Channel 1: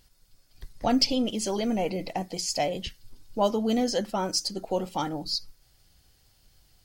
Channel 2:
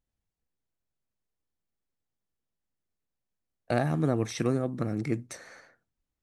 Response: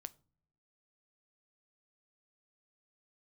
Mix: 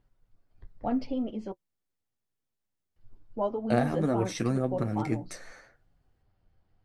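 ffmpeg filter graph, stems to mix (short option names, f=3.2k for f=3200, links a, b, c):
-filter_complex "[0:a]lowpass=1.3k,volume=-1.5dB,asplit=3[a][b][c];[a]atrim=end=1.52,asetpts=PTS-STARTPTS,afade=t=out:st=1.516:d=0.004:c=hsin[d];[b]atrim=start=1.52:end=2.96,asetpts=PTS-STARTPTS,volume=0[e];[c]atrim=start=2.96,asetpts=PTS-STARTPTS,afade=t=in:d=0.004:c=hsin[f];[d][e][f]concat=n=3:v=0:a=1[g];[1:a]volume=3dB[h];[g][h]amix=inputs=2:normalize=0,flanger=delay=6.9:depth=4.8:regen=-29:speed=0.84:shape=triangular"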